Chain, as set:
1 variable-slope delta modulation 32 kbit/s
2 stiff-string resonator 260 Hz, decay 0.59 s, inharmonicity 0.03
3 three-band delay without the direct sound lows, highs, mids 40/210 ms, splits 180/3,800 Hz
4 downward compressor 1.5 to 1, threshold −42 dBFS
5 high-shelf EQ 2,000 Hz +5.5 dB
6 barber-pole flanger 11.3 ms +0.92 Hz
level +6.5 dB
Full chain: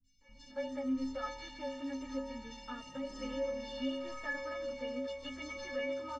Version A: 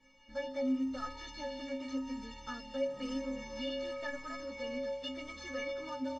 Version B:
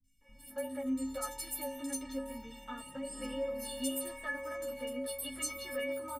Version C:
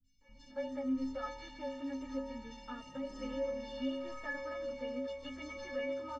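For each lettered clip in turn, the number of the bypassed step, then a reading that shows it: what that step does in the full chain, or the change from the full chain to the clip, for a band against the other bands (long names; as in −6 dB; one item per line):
3, 2 kHz band −2.0 dB
1, change in crest factor +3.5 dB
5, 4 kHz band −3.5 dB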